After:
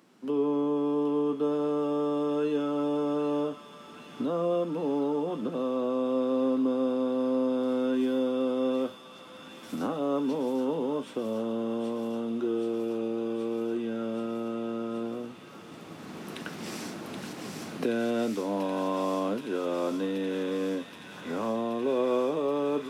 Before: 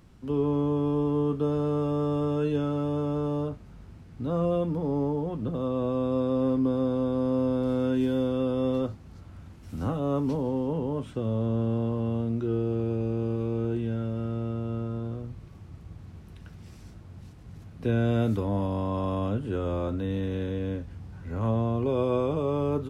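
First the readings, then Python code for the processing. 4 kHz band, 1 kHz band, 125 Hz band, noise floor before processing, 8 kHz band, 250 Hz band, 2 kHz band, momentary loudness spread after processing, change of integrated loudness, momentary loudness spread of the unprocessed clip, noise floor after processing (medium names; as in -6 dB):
+4.5 dB, +1.0 dB, -16.0 dB, -48 dBFS, no reading, -1.0 dB, +3.5 dB, 12 LU, -1.5 dB, 20 LU, -47 dBFS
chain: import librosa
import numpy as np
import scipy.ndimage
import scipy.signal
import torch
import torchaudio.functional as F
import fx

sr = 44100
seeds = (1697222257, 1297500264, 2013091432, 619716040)

y = fx.recorder_agc(x, sr, target_db=-19.0, rise_db_per_s=10.0, max_gain_db=30)
y = scipy.signal.sosfilt(scipy.signal.butter(4, 230.0, 'highpass', fs=sr, output='sos'), y)
y = fx.echo_wet_highpass(y, sr, ms=776, feedback_pct=81, hz=1900.0, wet_db=-4.5)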